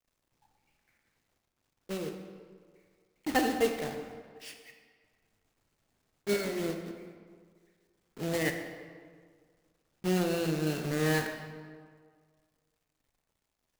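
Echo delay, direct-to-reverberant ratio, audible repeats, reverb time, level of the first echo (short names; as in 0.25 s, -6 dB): none, 4.5 dB, none, 1.8 s, none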